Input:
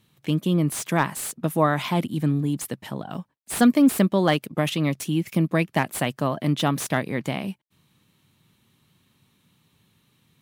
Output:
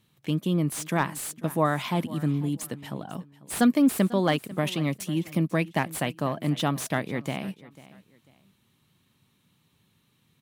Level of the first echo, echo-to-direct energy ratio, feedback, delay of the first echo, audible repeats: -19.0 dB, -18.5 dB, 29%, 0.495 s, 2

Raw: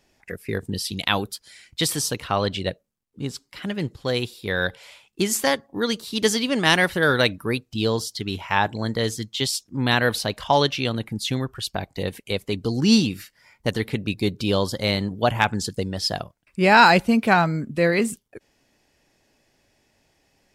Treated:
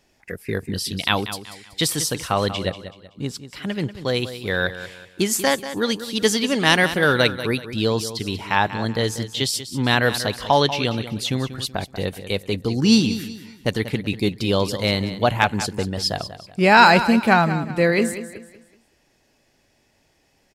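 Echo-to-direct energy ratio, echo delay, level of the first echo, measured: -12.0 dB, 0.189 s, -12.5 dB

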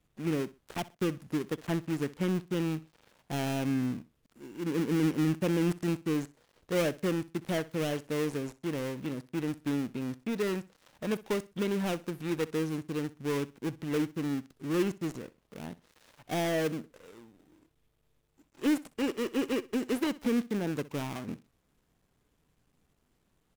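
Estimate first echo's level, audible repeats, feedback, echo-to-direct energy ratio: -19.0 dB, 2, 25%, -19.0 dB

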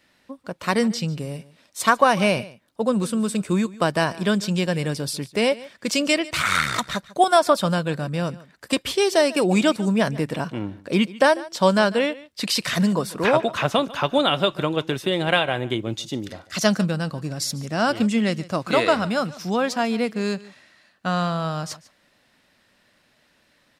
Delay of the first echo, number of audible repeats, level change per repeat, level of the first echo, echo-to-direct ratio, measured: 0.146 s, 1, no steady repeat, -19.5 dB, -19.5 dB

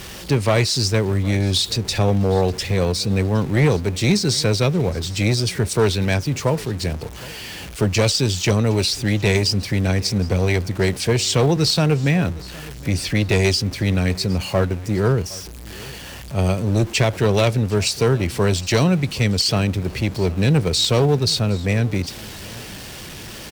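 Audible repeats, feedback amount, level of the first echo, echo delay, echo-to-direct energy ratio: 2, 31%, -21.0 dB, 0.764 s, -20.5 dB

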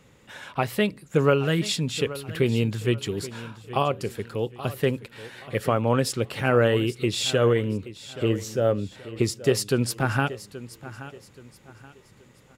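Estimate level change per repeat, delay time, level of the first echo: -9.5 dB, 0.827 s, -15.5 dB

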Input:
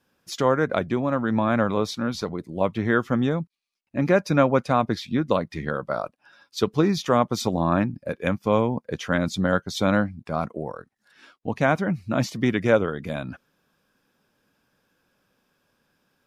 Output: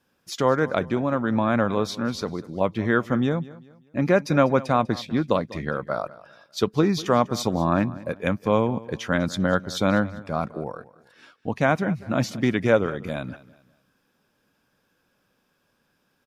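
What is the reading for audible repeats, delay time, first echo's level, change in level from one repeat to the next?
2, 0.197 s, -19.0 dB, -9.0 dB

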